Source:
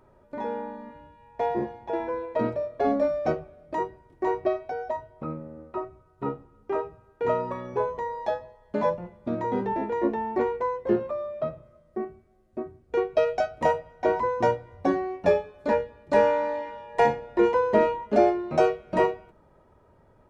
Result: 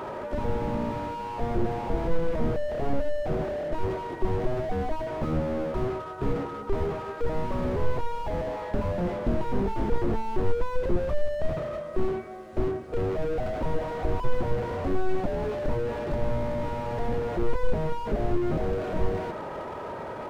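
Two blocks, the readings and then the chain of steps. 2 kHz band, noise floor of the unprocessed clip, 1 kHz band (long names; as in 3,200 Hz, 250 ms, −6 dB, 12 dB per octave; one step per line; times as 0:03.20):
−4.0 dB, −60 dBFS, −5.0 dB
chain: mid-hump overdrive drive 36 dB, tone 2,600 Hz, clips at −8 dBFS
slew-rate limiting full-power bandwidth 19 Hz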